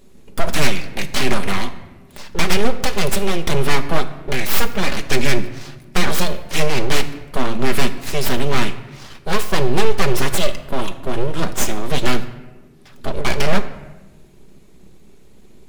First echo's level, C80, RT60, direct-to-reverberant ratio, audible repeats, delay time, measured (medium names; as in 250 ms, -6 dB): no echo, 15.0 dB, 1.1 s, 7.5 dB, no echo, no echo